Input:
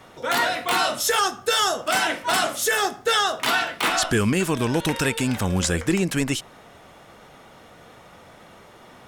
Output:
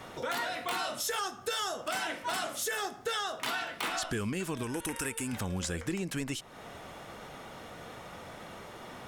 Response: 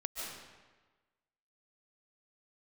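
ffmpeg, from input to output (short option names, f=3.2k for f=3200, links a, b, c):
-filter_complex "[0:a]asettb=1/sr,asplit=3[a][b][c];[a]atrim=end=4.634[d];[b]atrim=start=4.63:end=5.33,asetpts=PTS-STARTPTS,afade=t=in:d=0.004:c=qsin,afade=t=out:st=0.696:d=0.004:c=qsin,equalizer=f=160:t=o:w=0.67:g=-10,equalizer=f=630:t=o:w=0.67:g=-8,equalizer=f=4k:t=o:w=0.67:g=-10,equalizer=f=10k:t=o:w=0.67:g=10[e];[c]atrim=start=5.326[f];[d][e]acrossfade=d=0.004:c1=hsin:c2=qsin[g];[g][f]acrossfade=d=0.004:c1=qsin:c2=hsin,acompressor=threshold=-37dB:ratio=3,asoftclip=type=tanh:threshold=-21.5dB,volume=1.5dB"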